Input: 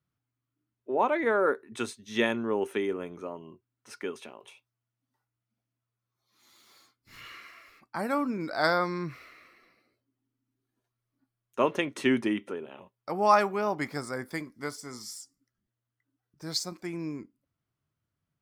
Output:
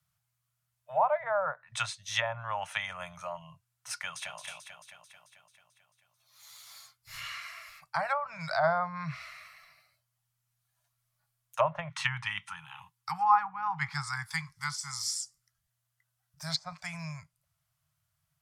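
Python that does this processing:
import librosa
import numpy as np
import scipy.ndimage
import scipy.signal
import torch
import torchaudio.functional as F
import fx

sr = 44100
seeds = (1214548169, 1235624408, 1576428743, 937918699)

y = fx.echo_throw(x, sr, start_s=3.97, length_s=0.41, ms=220, feedback_pct=65, wet_db=-6.5)
y = fx.cheby1_bandstop(y, sr, low_hz=220.0, high_hz=810.0, order=5, at=(11.89, 15.03))
y = scipy.signal.sosfilt(scipy.signal.cheby1(4, 1.0, [160.0, 620.0], 'bandstop', fs=sr, output='sos'), y)
y = fx.env_lowpass_down(y, sr, base_hz=850.0, full_db=-28.0)
y = fx.high_shelf(y, sr, hz=4400.0, db=11.5)
y = y * 10.0 ** (4.0 / 20.0)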